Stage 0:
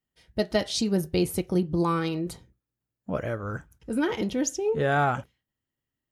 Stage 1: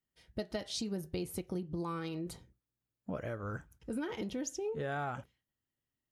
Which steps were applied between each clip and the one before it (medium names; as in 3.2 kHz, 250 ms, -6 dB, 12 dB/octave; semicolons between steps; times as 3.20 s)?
compression 4:1, threshold -31 dBFS, peak gain reduction 11 dB; trim -4.5 dB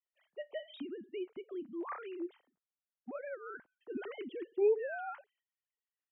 formants replaced by sine waves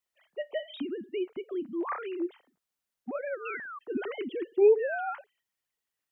painted sound fall, 3.45–3.79 s, 1.1–2.8 kHz -49 dBFS; trim +8 dB